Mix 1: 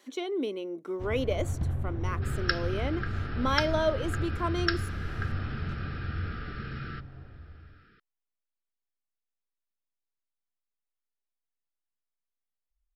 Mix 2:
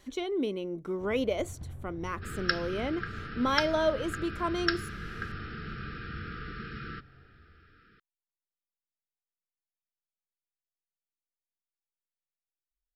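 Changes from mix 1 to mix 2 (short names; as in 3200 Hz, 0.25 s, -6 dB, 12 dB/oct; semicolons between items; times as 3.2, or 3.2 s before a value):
speech: remove HPF 240 Hz 24 dB/oct; first sound -12.0 dB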